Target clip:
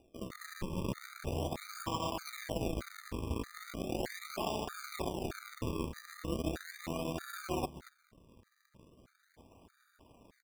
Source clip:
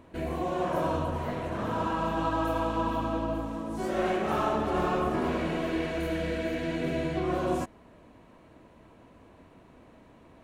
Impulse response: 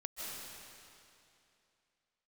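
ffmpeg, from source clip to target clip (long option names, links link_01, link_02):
-filter_complex "[0:a]areverse,acompressor=threshold=-38dB:ratio=8,areverse,acrossover=split=260|2200[link_01][link_02][link_03];[link_03]adelay=40[link_04];[link_01]adelay=230[link_05];[link_05][link_02][link_04]amix=inputs=3:normalize=0,acrusher=samples=41:mix=1:aa=0.000001:lfo=1:lforange=41:lforate=0.38,aeval=exprs='0.0335*(cos(1*acos(clip(val(0)/0.0335,-1,1)))-cos(1*PI/2))+0.00376*(cos(7*acos(clip(val(0)/0.0335,-1,1)))-cos(7*PI/2))':channel_layout=same,afftfilt=real='re*gt(sin(2*PI*1.6*pts/sr)*(1-2*mod(floor(b*sr/1024/1200),2)),0)':imag='im*gt(sin(2*PI*1.6*pts/sr)*(1-2*mod(floor(b*sr/1024/1200),2)),0)':win_size=1024:overlap=0.75,volume=7dB"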